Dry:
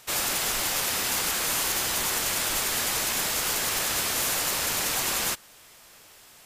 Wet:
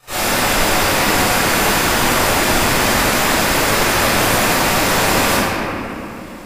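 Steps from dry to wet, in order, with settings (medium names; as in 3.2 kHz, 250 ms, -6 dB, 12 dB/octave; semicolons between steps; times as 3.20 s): treble shelf 2 kHz -7.5 dB; reverberation RT60 3.0 s, pre-delay 19 ms, DRR -16 dB; trim -5.5 dB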